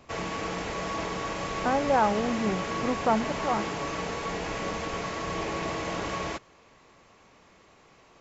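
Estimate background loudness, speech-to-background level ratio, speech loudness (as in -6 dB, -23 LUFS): -32.0 LUFS, 4.0 dB, -28.0 LUFS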